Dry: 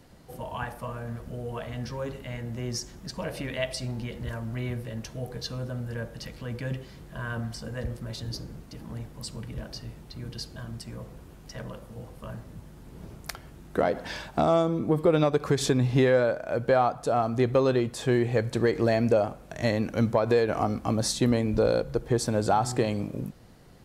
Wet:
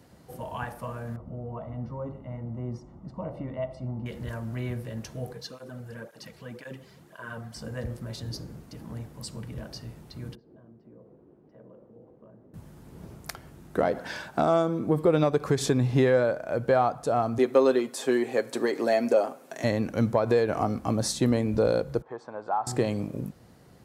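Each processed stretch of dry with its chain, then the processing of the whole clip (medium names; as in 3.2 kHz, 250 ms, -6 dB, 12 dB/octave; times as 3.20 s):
1.16–4.06 s: Savitzky-Golay filter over 65 samples + peaking EQ 430 Hz -8.5 dB 0.34 oct
5.33–7.56 s: bass shelf 160 Hz -10.5 dB + cancelling through-zero flanger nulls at 1.9 Hz, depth 4 ms
10.35–12.54 s: compression 2.5:1, threshold -41 dBFS + band-pass filter 370 Hz, Q 1.6 + distance through air 170 m
13.99–14.87 s: high-pass 130 Hz 6 dB/octave + peaking EQ 1.5 kHz +7.5 dB 0.21 oct
17.38–19.64 s: high-pass 240 Hz 24 dB/octave + treble shelf 6 kHz +5 dB + comb 7.5 ms, depth 44%
22.02–22.67 s: band-pass filter 1 kHz, Q 2.1 + distance through air 73 m
whole clip: high-pass 67 Hz; peaking EQ 3.2 kHz -3 dB 1.6 oct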